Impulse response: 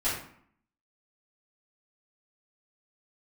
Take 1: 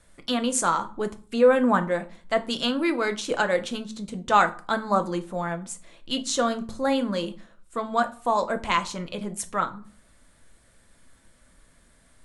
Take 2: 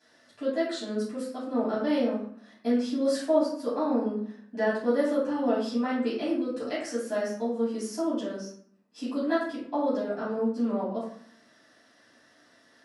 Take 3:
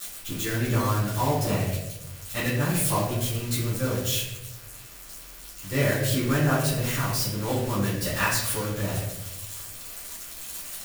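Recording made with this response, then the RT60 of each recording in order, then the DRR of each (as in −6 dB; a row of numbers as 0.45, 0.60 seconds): 2; 0.40, 0.60, 0.95 seconds; 8.0, −11.5, −13.0 decibels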